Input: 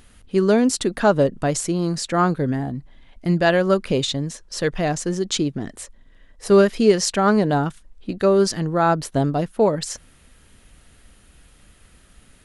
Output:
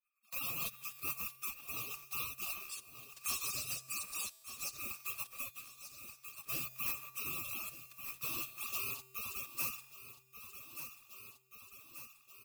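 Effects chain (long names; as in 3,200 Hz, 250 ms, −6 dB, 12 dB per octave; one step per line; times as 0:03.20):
compressing power law on the bin magnitudes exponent 0.17
Chebyshev band-stop filter 1,000–3,000 Hz, order 4
downward expander −41 dBFS
gate on every frequency bin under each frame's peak −25 dB weak
0:02.69–0:04.77: flat-topped bell 6,200 Hz +10.5 dB
leveller curve on the samples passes 3
tuned comb filter 130 Hz, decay 1.3 s, harmonics odd, mix 60%
rotating-speaker cabinet horn 6 Hz, later 1.1 Hz, at 0:01.77
repeating echo 1,183 ms, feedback 32%, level −20 dB
multiband upward and downward compressor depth 70%
level +8 dB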